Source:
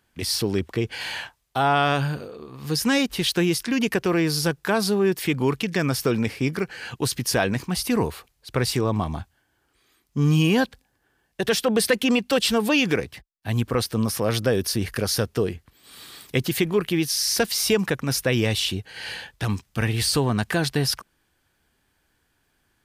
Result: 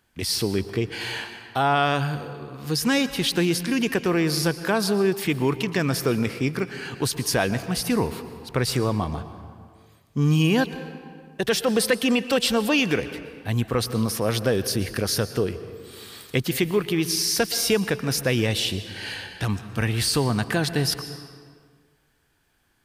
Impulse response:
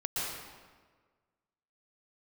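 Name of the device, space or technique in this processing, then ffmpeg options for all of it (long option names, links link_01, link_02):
ducked reverb: -filter_complex "[0:a]asplit=3[link_01][link_02][link_03];[1:a]atrim=start_sample=2205[link_04];[link_02][link_04]afir=irnorm=-1:irlink=0[link_05];[link_03]apad=whole_len=1007305[link_06];[link_05][link_06]sidechaincompress=threshold=-25dB:ratio=4:attack=16:release=1040,volume=-10dB[link_07];[link_01][link_07]amix=inputs=2:normalize=0,volume=-1.5dB"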